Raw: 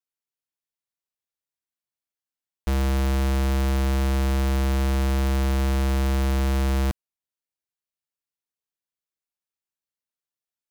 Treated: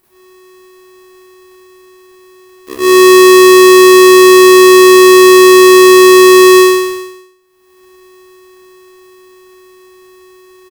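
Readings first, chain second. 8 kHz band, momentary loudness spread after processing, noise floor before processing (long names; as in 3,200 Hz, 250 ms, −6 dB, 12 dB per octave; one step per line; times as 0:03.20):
+25.5 dB, 5 LU, below −85 dBFS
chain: lower of the sound and its delayed copy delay 0.49 ms
high-pass filter 56 Hz 24 dB per octave
guitar amp tone stack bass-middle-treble 10-0-10
high-pass filter sweep 73 Hz → 1,600 Hz, 0:06.45–0:07.52
inverse Chebyshev band-stop filter 440–2,800 Hz, stop band 70 dB
in parallel at −7 dB: sample-rate reduction 3,300 Hz, jitter 0%
on the sum: single-tap delay 176 ms −20 dB
upward compression, threshold −32 dBFS
parametric band 400 Hz +14 dB 0.57 octaves
half-wave rectification
comb and all-pass reverb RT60 0.43 s, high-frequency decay 0.35×, pre-delay 10 ms, DRR −8 dB
ring modulator with a square carrier 370 Hz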